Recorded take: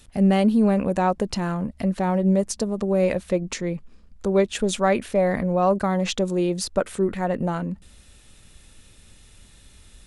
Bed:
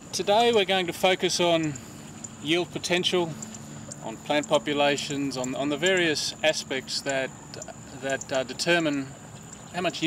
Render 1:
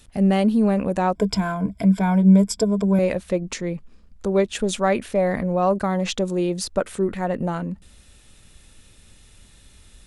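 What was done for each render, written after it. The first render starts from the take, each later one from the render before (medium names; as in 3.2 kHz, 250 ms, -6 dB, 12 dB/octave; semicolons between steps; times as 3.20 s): 1.15–2.99 s: rippled EQ curve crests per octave 1.7, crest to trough 16 dB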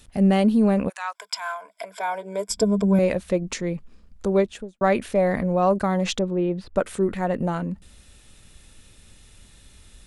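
0.88–2.48 s: high-pass 1.3 kHz -> 370 Hz 24 dB/octave; 4.31–4.81 s: studio fade out; 6.19–6.76 s: distance through air 480 m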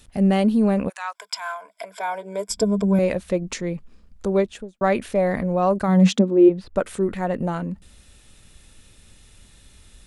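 5.87–6.48 s: resonant high-pass 130 Hz -> 340 Hz, resonance Q 7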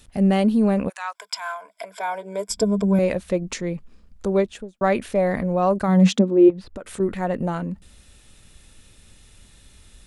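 6.50–7.00 s: compression 16:1, threshold -29 dBFS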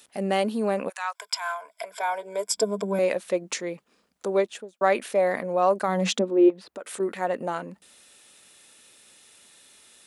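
high-pass 400 Hz 12 dB/octave; treble shelf 8.4 kHz +4 dB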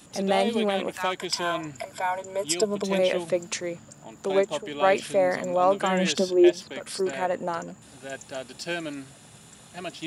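add bed -8.5 dB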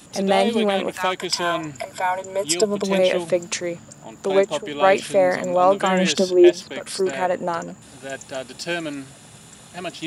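trim +5 dB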